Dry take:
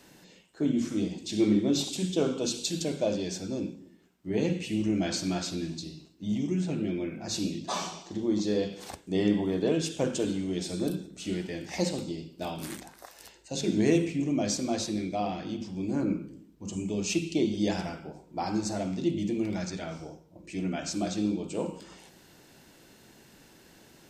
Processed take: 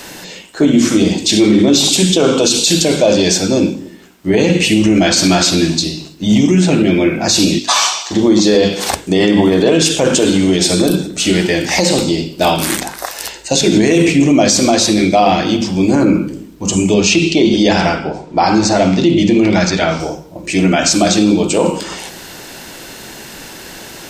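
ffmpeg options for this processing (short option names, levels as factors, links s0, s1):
-filter_complex "[0:a]asplit=3[s0][s1][s2];[s0]afade=t=out:st=7.58:d=0.02[s3];[s1]highpass=1100,afade=t=in:st=7.58:d=0.02,afade=t=out:st=8.1:d=0.02[s4];[s2]afade=t=in:st=8.1:d=0.02[s5];[s3][s4][s5]amix=inputs=3:normalize=0,asettb=1/sr,asplit=3[s6][s7][s8];[s6]atrim=end=16.944[s9];[s7]atrim=start=16.94:end=20,asetpts=PTS-STARTPTS,afade=t=in:d=0.004:c=qsin,afade=t=out:st=3.056:d=0.004:c=qsin,lowpass=5200[s10];[s8]atrim=start=19.996[s11];[s9][s10]acrossfade=d=0.004:c1=hsin:c2=qsin[s12];[s12][s11]acrossfade=d=0.004:c1=qsin:c2=hsin,equalizer=f=140:w=0.34:g=-6.5,bandreject=f=50.76:t=h:w=4,bandreject=f=101.52:t=h:w=4,bandreject=f=152.28:t=h:w=4,bandreject=f=203.04:t=h:w=4,bandreject=f=253.8:t=h:w=4,bandreject=f=304.56:t=h:w=4,bandreject=f=355.32:t=h:w=4,bandreject=f=406.08:t=h:w=4,bandreject=f=456.84:t=h:w=4,alimiter=level_in=22.4:limit=0.891:release=50:level=0:latency=1,volume=0.891"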